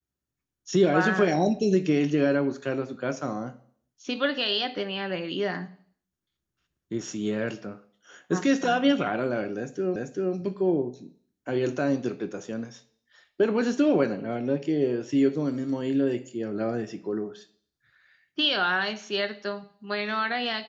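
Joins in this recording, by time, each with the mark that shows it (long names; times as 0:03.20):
0:09.96: the same again, the last 0.39 s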